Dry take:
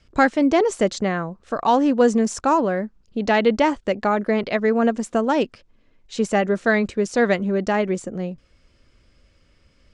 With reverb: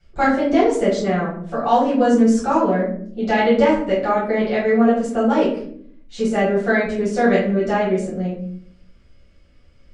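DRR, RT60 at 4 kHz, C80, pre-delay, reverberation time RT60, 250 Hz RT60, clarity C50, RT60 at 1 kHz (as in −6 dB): −9.0 dB, 0.35 s, 8.5 dB, 6 ms, 0.60 s, 0.95 s, 4.0 dB, 0.50 s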